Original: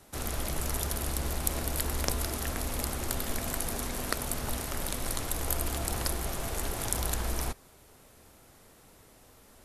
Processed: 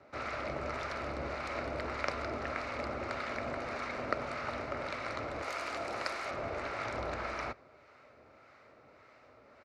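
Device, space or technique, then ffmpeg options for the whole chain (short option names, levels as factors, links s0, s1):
guitar amplifier with harmonic tremolo: -filter_complex "[0:a]asettb=1/sr,asplit=3[s0][s1][s2];[s0]atrim=end=5.424[s3];[s1]atrim=start=5.42:end=6.31,asetpts=PTS-STARTPTS,afade=t=in:d=0.004:c=qsin,afade=t=out:st=0.886:d=0.004:c=qsin,aemphasis=mode=production:type=bsi[s4];[s2]atrim=start=6.306[s5];[s3][s4]acrossfade=d=0.004:c1=hsin:c2=qsin[s6];[s6][s5]acrossfade=d=0.004:c1=qsin:c2=hsin,acrossover=split=850[s7][s8];[s7]aeval=exprs='val(0)*(1-0.5/2+0.5/2*cos(2*PI*1.7*n/s))':c=same[s9];[s8]aeval=exprs='val(0)*(1-0.5/2-0.5/2*cos(2*PI*1.7*n/s))':c=same[s10];[s9][s10]amix=inputs=2:normalize=0,asoftclip=type=tanh:threshold=0.211,highpass=110,equalizer=f=180:t=q:w=4:g=-9,equalizer=f=590:t=q:w=4:g=9,equalizer=f=1300:t=q:w=4:g=10,equalizer=f=2200:t=q:w=4:g=9,equalizer=f=3300:t=q:w=4:g=-10,lowpass=f=4300:w=0.5412,lowpass=f=4300:w=1.3066,asplit=2[s11][s12];[s12]adelay=93.29,volume=0.0398,highshelf=f=4000:g=-2.1[s13];[s11][s13]amix=inputs=2:normalize=0,volume=0.891"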